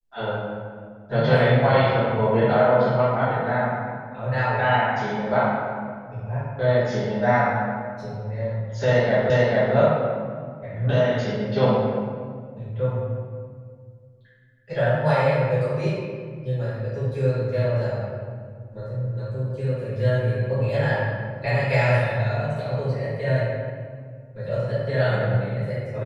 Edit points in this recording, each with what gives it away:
9.30 s: repeat of the last 0.44 s

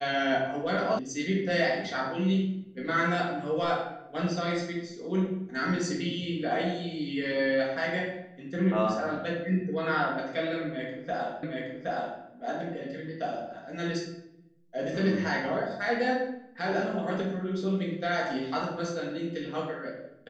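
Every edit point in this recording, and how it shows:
0.99 s: sound stops dead
11.43 s: repeat of the last 0.77 s

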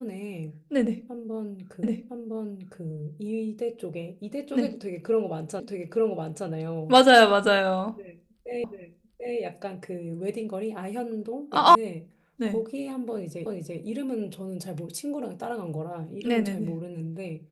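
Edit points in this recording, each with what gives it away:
1.83 s: repeat of the last 1.01 s
5.60 s: repeat of the last 0.87 s
8.64 s: repeat of the last 0.74 s
11.75 s: sound stops dead
13.46 s: repeat of the last 0.34 s

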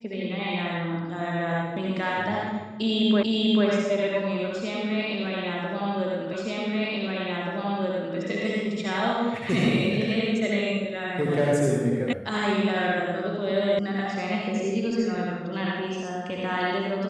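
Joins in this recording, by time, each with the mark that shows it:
3.23 s: repeat of the last 0.44 s
6.33 s: repeat of the last 1.83 s
12.13 s: sound stops dead
13.79 s: sound stops dead

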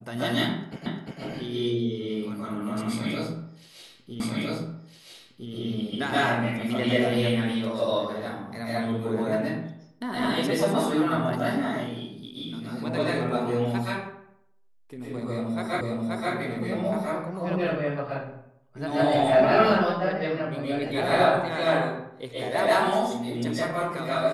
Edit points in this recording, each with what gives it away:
0.86 s: repeat of the last 0.35 s
4.20 s: repeat of the last 1.31 s
15.81 s: repeat of the last 0.53 s

